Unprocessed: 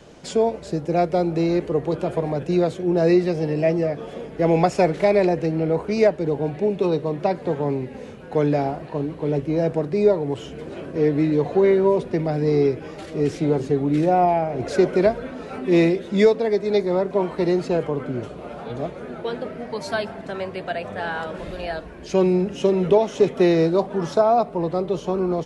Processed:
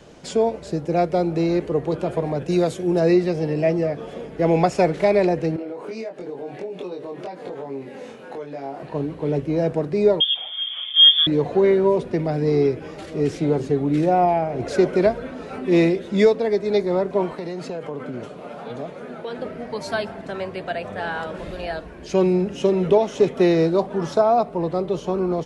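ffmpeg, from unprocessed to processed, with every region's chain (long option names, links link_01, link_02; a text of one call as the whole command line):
ffmpeg -i in.wav -filter_complex "[0:a]asettb=1/sr,asplit=3[link_01][link_02][link_03];[link_01]atrim=end=2.484[link_04];[link_02]atrim=start=2.48:end=3,asetpts=PTS-STARTPTS,afade=type=in:duration=0.004:curve=qsin,afade=type=out:start_time=0.516:duration=0.004:curve=qsin,aemphasis=mode=production:type=50kf,bandreject=frequency=4200:width=26[link_05];[link_03]atrim=start=2.996[link_06];[link_04][link_05]acrossfade=duration=0.004:curve1=hsin:curve2=qsin[link_07];[link_07][link_06]acrossfade=duration=0.004:curve1=qsin:curve2=hsin,asettb=1/sr,asplit=3[link_08][link_09][link_10];[link_08]atrim=end=5.564[link_11];[link_09]atrim=start=5.56:end=8.83,asetpts=PTS-STARTPTS,afade=type=in:duration=0.004:curve=qsin,afade=type=out:start_time=3.266:duration=0.004:curve=qsin,highpass=260,acompressor=threshold=-30dB:ratio=10:attack=3.2:release=140:knee=1:detection=peak,asplit=2[link_12][link_13];[link_13]adelay=22,volume=-2dB[link_14];[link_12][link_14]amix=inputs=2:normalize=0,atrim=end_sample=144207[link_15];[link_10]atrim=start=8.826[link_16];[link_11][link_15]acrossfade=duration=0.004:curve1=hsin:curve2=qsin[link_17];[link_17][link_16]acrossfade=duration=0.004:curve1=qsin:curve2=hsin,asettb=1/sr,asplit=3[link_18][link_19][link_20];[link_18]atrim=end=10.204[link_21];[link_19]atrim=start=10.2:end=11.27,asetpts=PTS-STARTPTS,afade=type=in:duration=0.004:curve=qsin,afade=type=out:start_time=1.066:duration=0.004:curve=qsin,highpass=140,equalizer=frequency=480:width_type=o:width=0.26:gain=13,lowpass=frequency=3100:width_type=q:width=0.5098,lowpass=frequency=3100:width_type=q:width=0.6013,lowpass=frequency=3100:width_type=q:width=0.9,lowpass=frequency=3100:width_type=q:width=2.563,afreqshift=-3700[link_22];[link_20]atrim=start=11.266[link_23];[link_21][link_22]acrossfade=duration=0.004:curve1=hsin:curve2=qsin[link_24];[link_24][link_23]acrossfade=duration=0.004:curve1=qsin:curve2=hsin,asettb=1/sr,asplit=3[link_25][link_26][link_27];[link_25]atrim=end=17.334[link_28];[link_26]atrim=start=17.33:end=19.39,asetpts=PTS-STARTPTS,afade=type=in:duration=0.004:curve=qsin,afade=type=out:start_time=2.056:duration=0.004:curve=qsin,highpass=160,equalizer=frequency=350:width_type=o:width=0.24:gain=-5.5,acompressor=threshold=-25dB:ratio=10:attack=3.2:release=140:knee=1:detection=peak[link_29];[link_27]atrim=start=19.386[link_30];[link_28][link_29]acrossfade=duration=0.004:curve1=hsin:curve2=qsin[link_31];[link_31][link_30]acrossfade=duration=0.004:curve1=qsin:curve2=hsin" out.wav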